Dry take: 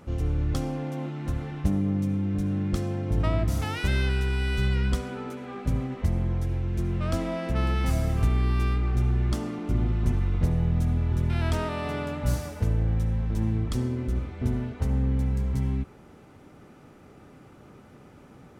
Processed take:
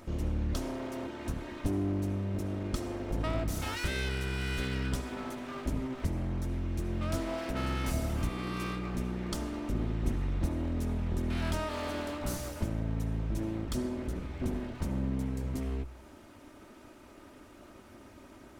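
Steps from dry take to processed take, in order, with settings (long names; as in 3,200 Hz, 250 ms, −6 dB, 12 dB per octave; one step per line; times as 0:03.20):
lower of the sound and its delayed copy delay 3.2 ms
high-shelf EQ 4,000 Hz +5.5 dB
hum removal 62.25 Hz, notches 2
in parallel at +1 dB: downward compressor, threshold −36 dBFS, peak gain reduction 16 dB
on the sum: level −7 dB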